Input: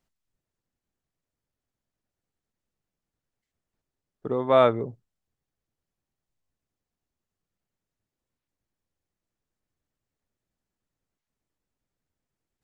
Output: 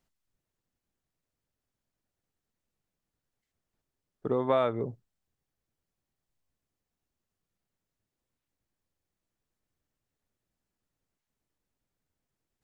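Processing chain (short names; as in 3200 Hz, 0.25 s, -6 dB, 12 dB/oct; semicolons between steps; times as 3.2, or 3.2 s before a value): compressor 6:1, threshold -22 dBFS, peak gain reduction 9.5 dB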